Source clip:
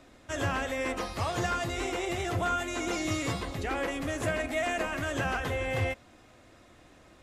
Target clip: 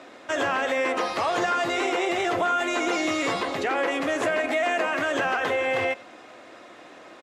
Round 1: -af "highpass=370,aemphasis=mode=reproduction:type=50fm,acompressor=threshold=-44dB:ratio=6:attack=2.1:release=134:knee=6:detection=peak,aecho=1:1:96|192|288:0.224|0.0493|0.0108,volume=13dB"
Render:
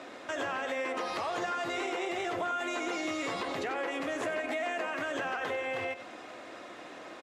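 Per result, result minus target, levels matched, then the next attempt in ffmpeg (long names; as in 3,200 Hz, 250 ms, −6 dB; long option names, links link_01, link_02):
downward compressor: peak gain reduction +9.5 dB; echo-to-direct +10.5 dB
-af "highpass=370,aemphasis=mode=reproduction:type=50fm,acompressor=threshold=-32.5dB:ratio=6:attack=2.1:release=134:knee=6:detection=peak,aecho=1:1:96|192|288:0.224|0.0493|0.0108,volume=13dB"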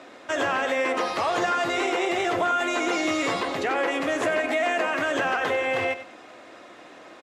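echo-to-direct +10.5 dB
-af "highpass=370,aemphasis=mode=reproduction:type=50fm,acompressor=threshold=-32.5dB:ratio=6:attack=2.1:release=134:knee=6:detection=peak,aecho=1:1:96|192:0.0668|0.0147,volume=13dB"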